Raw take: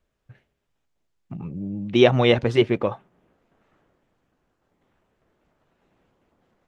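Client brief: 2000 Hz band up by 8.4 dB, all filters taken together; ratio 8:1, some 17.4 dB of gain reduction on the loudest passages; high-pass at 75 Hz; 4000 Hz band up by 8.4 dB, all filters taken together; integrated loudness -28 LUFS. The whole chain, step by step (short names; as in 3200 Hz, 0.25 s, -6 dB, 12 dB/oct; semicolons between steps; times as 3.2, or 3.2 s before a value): HPF 75 Hz; bell 2000 Hz +7.5 dB; bell 4000 Hz +8 dB; compressor 8:1, threshold -26 dBFS; gain +3.5 dB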